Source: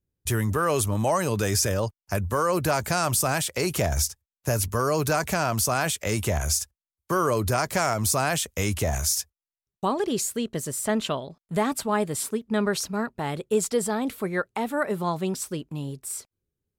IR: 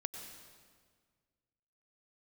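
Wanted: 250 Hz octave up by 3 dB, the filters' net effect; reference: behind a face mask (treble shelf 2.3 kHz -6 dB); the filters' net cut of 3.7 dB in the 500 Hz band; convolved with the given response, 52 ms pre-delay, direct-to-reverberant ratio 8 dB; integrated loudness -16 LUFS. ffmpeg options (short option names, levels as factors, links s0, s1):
-filter_complex "[0:a]equalizer=f=250:t=o:g=5.5,equalizer=f=500:t=o:g=-6,asplit=2[s0][s1];[1:a]atrim=start_sample=2205,adelay=52[s2];[s1][s2]afir=irnorm=-1:irlink=0,volume=0.447[s3];[s0][s3]amix=inputs=2:normalize=0,highshelf=f=2300:g=-6,volume=3.35"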